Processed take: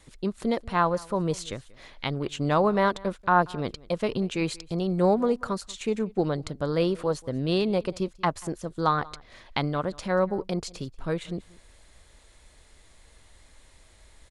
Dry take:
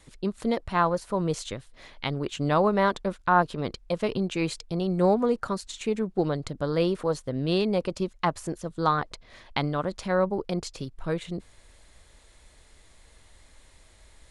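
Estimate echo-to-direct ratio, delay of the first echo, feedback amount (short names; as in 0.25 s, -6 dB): -23.0 dB, 0.185 s, no steady repeat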